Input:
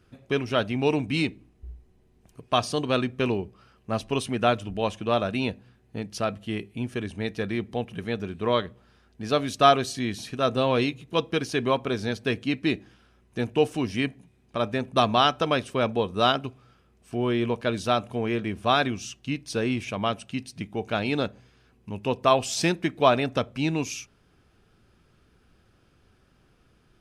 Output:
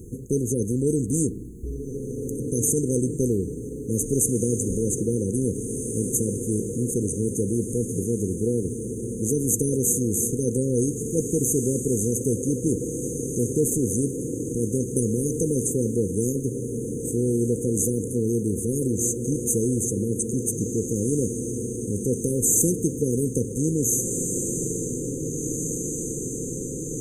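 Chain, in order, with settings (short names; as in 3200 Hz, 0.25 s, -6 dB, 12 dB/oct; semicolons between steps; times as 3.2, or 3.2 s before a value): brick-wall FIR band-stop 510–6100 Hz; tone controls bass +2 dB, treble +5 dB; diffused feedback echo 1.815 s, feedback 56%, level -13 dB; spectral compressor 2:1; gain +4 dB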